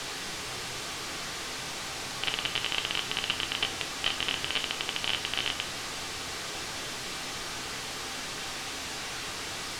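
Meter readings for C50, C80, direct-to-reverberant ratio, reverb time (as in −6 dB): 14.5 dB, 19.5 dB, 5.5 dB, non-exponential decay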